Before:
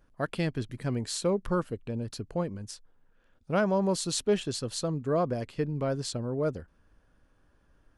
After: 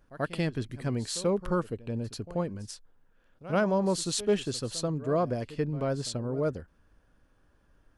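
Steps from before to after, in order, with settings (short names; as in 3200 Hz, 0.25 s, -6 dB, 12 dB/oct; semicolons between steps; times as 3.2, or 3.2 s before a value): pre-echo 86 ms -16.5 dB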